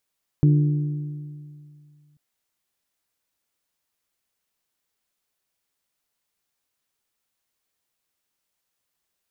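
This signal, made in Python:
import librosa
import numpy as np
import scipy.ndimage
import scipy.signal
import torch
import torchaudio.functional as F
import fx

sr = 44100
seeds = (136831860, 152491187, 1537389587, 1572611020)

y = fx.strike_metal(sr, length_s=1.74, level_db=-12, body='bell', hz=148.0, decay_s=2.31, tilt_db=9, modes=4)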